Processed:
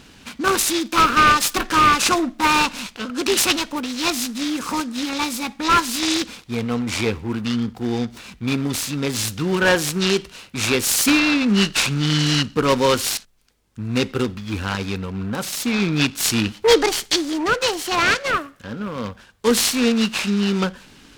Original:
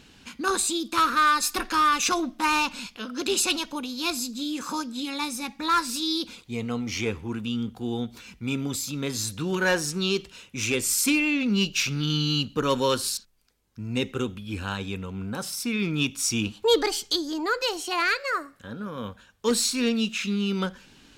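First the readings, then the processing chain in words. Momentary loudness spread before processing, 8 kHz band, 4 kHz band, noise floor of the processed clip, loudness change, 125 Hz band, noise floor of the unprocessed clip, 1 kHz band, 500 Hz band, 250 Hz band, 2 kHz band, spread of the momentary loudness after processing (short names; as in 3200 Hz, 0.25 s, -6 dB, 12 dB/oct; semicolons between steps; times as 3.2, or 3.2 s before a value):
11 LU, +5.0 dB, +6.0 dB, -48 dBFS, +6.5 dB, +6.5 dB, -55 dBFS, +6.5 dB, +6.5 dB, +6.5 dB, +6.5 dB, 11 LU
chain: noise-modulated delay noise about 1200 Hz, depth 0.04 ms; gain +6.5 dB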